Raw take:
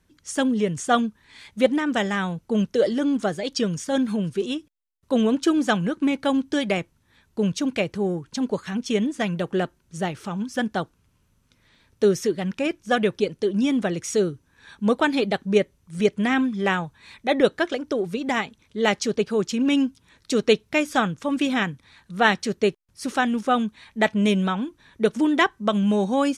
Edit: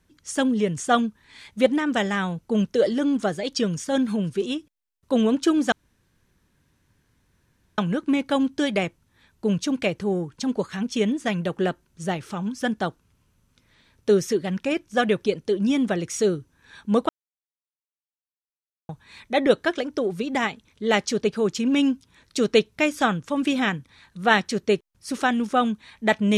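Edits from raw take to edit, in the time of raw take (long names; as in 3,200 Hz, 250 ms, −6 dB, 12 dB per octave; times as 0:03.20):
0:05.72: splice in room tone 2.06 s
0:15.03–0:16.83: silence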